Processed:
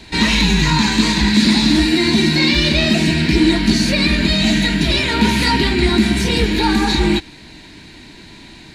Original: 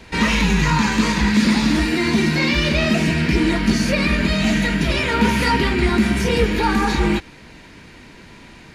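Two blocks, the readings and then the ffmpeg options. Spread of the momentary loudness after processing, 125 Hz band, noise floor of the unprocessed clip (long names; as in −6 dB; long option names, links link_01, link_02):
3 LU, +2.0 dB, −43 dBFS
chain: -af "equalizer=frequency=315:width_type=o:width=0.33:gain=5,equalizer=frequency=500:width_type=o:width=0.33:gain=-8,equalizer=frequency=1250:width_type=o:width=0.33:gain=-8,equalizer=frequency=4000:width_type=o:width=0.33:gain=11,equalizer=frequency=8000:width_type=o:width=0.33:gain=5,volume=2dB"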